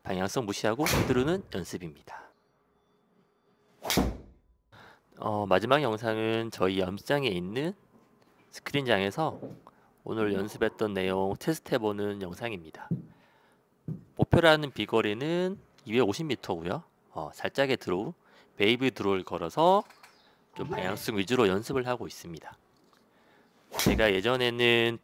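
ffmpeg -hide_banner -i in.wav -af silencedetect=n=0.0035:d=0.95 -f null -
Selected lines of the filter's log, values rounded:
silence_start: 2.29
silence_end: 3.82 | silence_duration: 1.53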